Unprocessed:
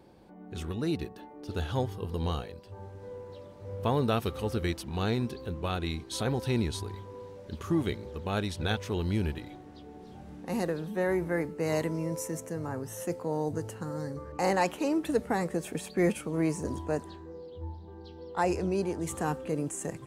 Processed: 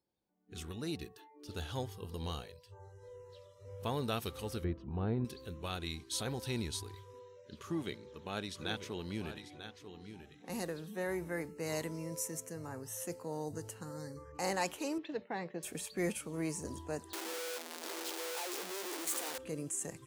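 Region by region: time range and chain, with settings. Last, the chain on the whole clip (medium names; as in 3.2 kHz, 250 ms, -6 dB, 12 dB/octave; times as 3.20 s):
4.64–5.25 s: low-pass 1.1 kHz + bass shelf 420 Hz +6 dB
7.19–10.50 s: high-pass 130 Hz + treble shelf 7.1 kHz -9.5 dB + delay 943 ms -10.5 dB
14.98–15.63 s: expander -38 dBFS + cabinet simulation 160–3800 Hz, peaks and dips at 250 Hz -6 dB, 460 Hz -3 dB, 1.3 kHz -7 dB
17.13–19.38 s: one-bit comparator + high-pass 260 Hz 24 dB/octave
whole clip: treble shelf 8.9 kHz -9 dB; spectral noise reduction 23 dB; pre-emphasis filter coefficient 0.8; trim +4.5 dB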